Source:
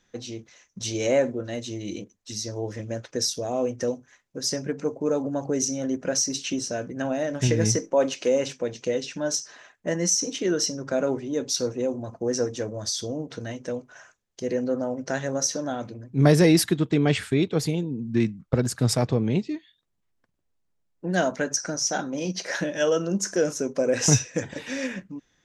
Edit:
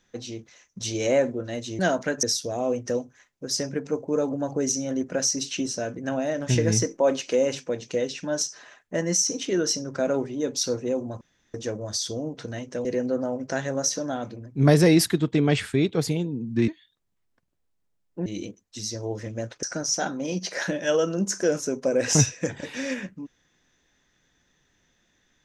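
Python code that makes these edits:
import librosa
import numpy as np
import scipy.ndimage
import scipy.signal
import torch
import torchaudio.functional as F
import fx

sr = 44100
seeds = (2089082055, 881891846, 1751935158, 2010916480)

y = fx.edit(x, sr, fx.swap(start_s=1.79, length_s=1.37, other_s=21.12, other_length_s=0.44),
    fx.room_tone_fill(start_s=12.14, length_s=0.33),
    fx.cut(start_s=13.78, length_s=0.65),
    fx.cut(start_s=18.26, length_s=1.28), tone=tone)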